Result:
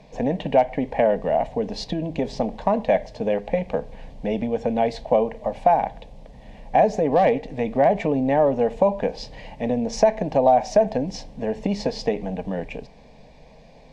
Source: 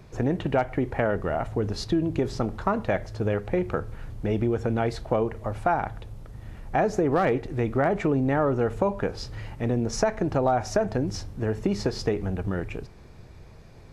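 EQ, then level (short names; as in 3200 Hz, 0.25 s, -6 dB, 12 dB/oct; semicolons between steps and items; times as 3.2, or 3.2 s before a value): LPF 6500 Hz 12 dB/oct; tone controls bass -8 dB, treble -7 dB; fixed phaser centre 360 Hz, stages 6; +8.5 dB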